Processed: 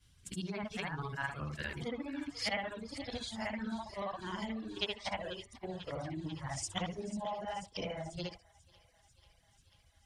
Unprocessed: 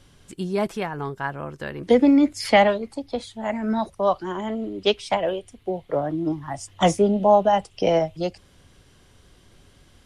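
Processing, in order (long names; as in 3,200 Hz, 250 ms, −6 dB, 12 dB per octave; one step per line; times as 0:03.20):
every overlapping window played backwards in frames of 162 ms
in parallel at −2 dB: speech leveller within 4 dB 0.5 s
on the sum: treble cut that deepens with the level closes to 2,800 Hz, closed at −16 dBFS
parametric band 74 Hz +10.5 dB 2.4 octaves
hum removal 47.67 Hz, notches 29
downward compressor 4 to 1, threshold −23 dBFS, peak gain reduction 11 dB
guitar amp tone stack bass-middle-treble 5-5-5
on a send: feedback echo with a high-pass in the loop 491 ms, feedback 82%, high-pass 580 Hz, level −14 dB
on the sum: reverb reduction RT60 0.74 s
noise gate −52 dBFS, range −11 dB
level +5 dB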